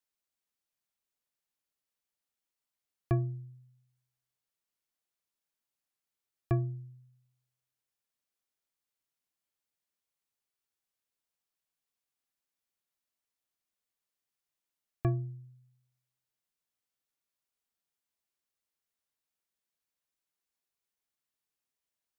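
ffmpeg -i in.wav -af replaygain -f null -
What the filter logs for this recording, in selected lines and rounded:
track_gain = +37.7 dB
track_peak = 0.100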